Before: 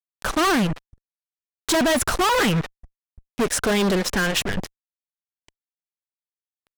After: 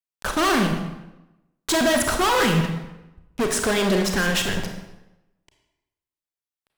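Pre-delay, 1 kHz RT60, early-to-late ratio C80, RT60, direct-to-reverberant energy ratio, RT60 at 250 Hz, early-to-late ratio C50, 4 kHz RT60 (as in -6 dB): 30 ms, 0.95 s, 7.5 dB, 0.95 s, 3.5 dB, 1.0 s, 5.5 dB, 0.75 s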